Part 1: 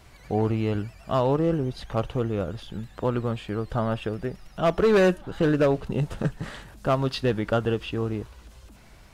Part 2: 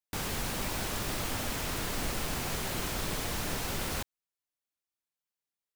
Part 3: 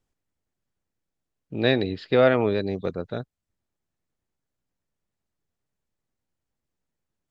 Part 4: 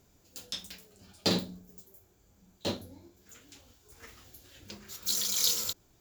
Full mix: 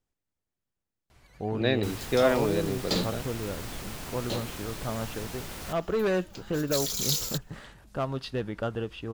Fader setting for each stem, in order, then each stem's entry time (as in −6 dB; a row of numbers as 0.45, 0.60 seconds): −7.5, −5.5, −5.0, −1.0 decibels; 1.10, 1.70, 0.00, 1.65 seconds